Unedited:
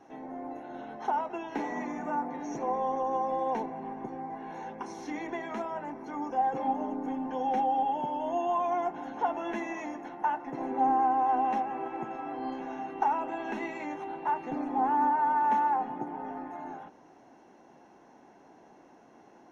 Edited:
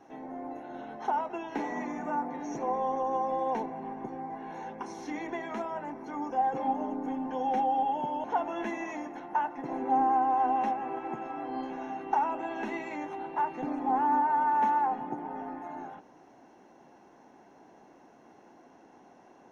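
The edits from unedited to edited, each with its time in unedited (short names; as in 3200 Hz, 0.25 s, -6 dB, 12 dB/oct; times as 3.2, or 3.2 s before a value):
8.24–9.13 cut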